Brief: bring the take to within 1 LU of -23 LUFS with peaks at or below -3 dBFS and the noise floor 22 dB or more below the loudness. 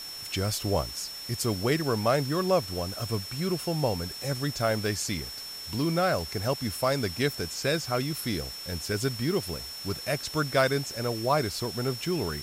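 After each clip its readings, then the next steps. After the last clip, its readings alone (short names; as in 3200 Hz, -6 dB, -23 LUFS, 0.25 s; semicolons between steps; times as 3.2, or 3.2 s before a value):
steady tone 5400 Hz; tone level -38 dBFS; noise floor -40 dBFS; noise floor target -51 dBFS; loudness -29.0 LUFS; peak -11.5 dBFS; loudness target -23.0 LUFS
-> notch 5400 Hz, Q 30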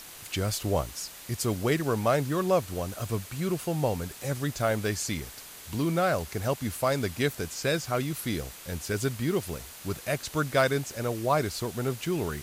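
steady tone none; noise floor -46 dBFS; noise floor target -52 dBFS
-> denoiser 6 dB, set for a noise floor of -46 dBFS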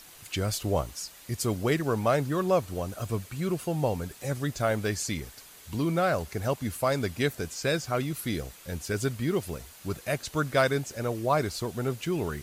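noise floor -51 dBFS; noise floor target -52 dBFS
-> denoiser 6 dB, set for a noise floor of -51 dBFS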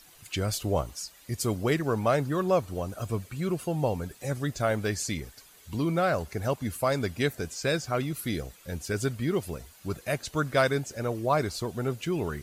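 noise floor -55 dBFS; loudness -29.5 LUFS; peak -12.0 dBFS; loudness target -23.0 LUFS
-> gain +6.5 dB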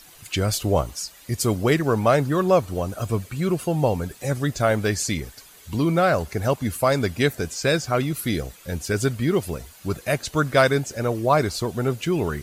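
loudness -23.0 LUFS; peak -5.5 dBFS; noise floor -48 dBFS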